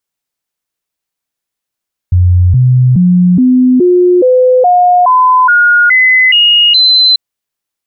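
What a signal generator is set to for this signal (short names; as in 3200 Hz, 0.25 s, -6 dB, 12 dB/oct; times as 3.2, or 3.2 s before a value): stepped sine 89.6 Hz up, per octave 2, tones 12, 0.42 s, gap 0.00 s -3.5 dBFS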